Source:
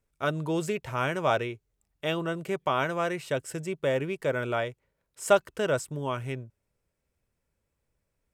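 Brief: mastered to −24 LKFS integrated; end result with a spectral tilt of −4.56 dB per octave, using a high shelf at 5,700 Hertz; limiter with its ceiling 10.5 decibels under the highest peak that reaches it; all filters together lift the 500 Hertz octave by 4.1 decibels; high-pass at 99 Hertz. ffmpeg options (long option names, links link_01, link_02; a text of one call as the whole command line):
ffmpeg -i in.wav -af "highpass=99,equalizer=frequency=500:width_type=o:gain=5,highshelf=frequency=5700:gain=7.5,volume=4.5dB,alimiter=limit=-10dB:level=0:latency=1" out.wav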